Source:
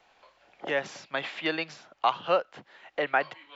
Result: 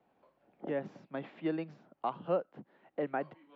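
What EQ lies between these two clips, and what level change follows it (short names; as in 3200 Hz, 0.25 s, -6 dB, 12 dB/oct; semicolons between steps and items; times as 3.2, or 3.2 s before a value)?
band-pass 210 Hz, Q 1.4; +4.5 dB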